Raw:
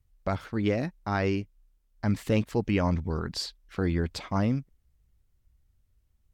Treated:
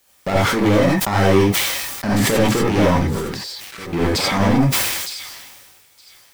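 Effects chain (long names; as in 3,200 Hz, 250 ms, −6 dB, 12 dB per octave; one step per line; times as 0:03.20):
high-pass filter 170 Hz 12 dB per octave
parametric band 380 Hz +3 dB
leveller curve on the samples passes 5
brickwall limiter −17 dBFS, peak gain reduction 4.5 dB
0:03.03–0:03.93: output level in coarse steps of 18 dB
bit-depth reduction 10 bits, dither triangular
on a send: delay with a high-pass on its return 914 ms, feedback 54%, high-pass 3,300 Hz, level −19 dB
on the sum: reverb whose tail is shaped and stops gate 110 ms rising, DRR −5 dB
level that may fall only so fast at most 32 dB per second
level −1 dB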